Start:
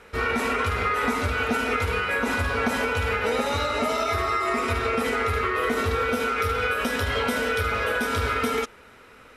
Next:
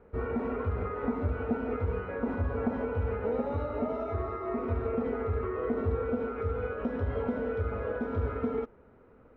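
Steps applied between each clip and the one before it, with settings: Bessel low-pass 510 Hz, order 2; trim -2 dB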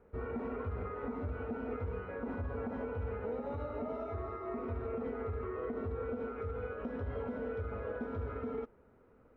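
peak limiter -23.5 dBFS, peak gain reduction 6.5 dB; trim -6 dB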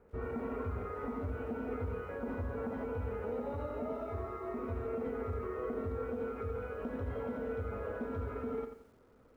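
bit-crushed delay 88 ms, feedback 35%, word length 11-bit, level -8.5 dB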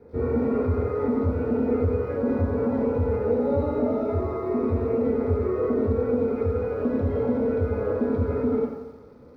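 reverberation RT60 1.0 s, pre-delay 3 ms, DRR -1.5 dB

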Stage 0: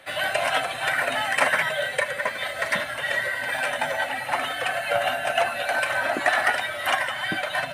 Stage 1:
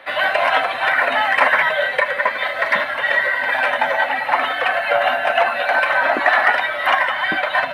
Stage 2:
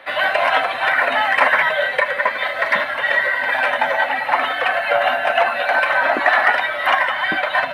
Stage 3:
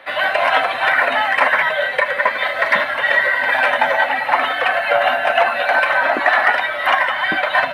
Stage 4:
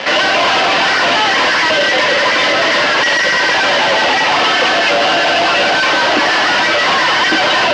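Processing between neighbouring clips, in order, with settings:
ten-band graphic EQ 125 Hz -4 dB, 250 Hz +6 dB, 500 Hz +6 dB, 1 kHz +12 dB, 2 kHz +8 dB, 4 kHz +6 dB, 8 kHz -11 dB; in parallel at -0.5 dB: peak limiter -4 dBFS, peak gain reduction 8.5 dB; on the sum: trim -8.5 dB
no audible change
level rider gain up to 5 dB
fuzz box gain 38 dB, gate -44 dBFS; cabinet simulation 130–5500 Hz, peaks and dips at 320 Hz +8 dB, 480 Hz +5 dB, 1 kHz +3 dB, 2.9 kHz +7 dB, 4.9 kHz +4 dB

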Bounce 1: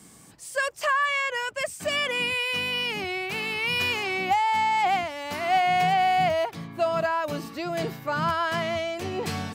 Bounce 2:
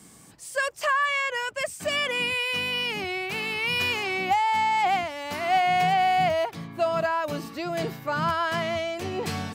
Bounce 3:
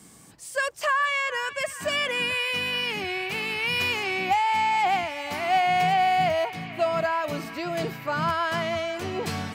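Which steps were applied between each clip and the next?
no audible change
band-passed feedback delay 432 ms, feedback 83%, band-pass 2.2 kHz, level -14 dB

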